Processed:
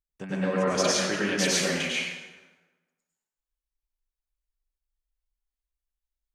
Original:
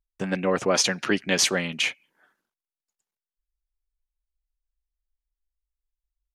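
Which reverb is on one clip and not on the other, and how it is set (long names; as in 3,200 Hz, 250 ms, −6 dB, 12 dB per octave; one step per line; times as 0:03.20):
dense smooth reverb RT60 1.2 s, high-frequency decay 0.7×, pre-delay 85 ms, DRR −6.5 dB
level −9 dB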